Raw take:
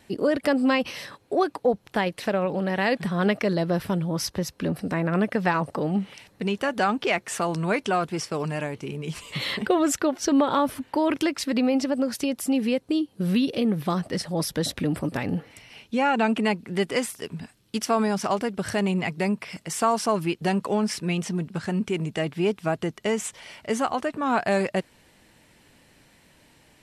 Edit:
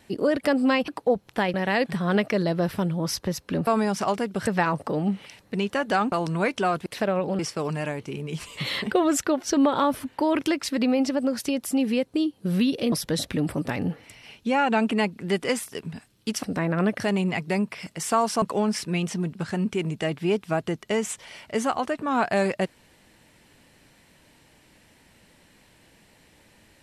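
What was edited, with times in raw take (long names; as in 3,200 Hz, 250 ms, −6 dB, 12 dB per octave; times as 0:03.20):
0:00.88–0:01.46: remove
0:02.12–0:02.65: move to 0:08.14
0:04.78–0:05.35: swap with 0:17.90–0:18.70
0:07.00–0:07.40: remove
0:13.67–0:14.39: remove
0:20.12–0:20.57: remove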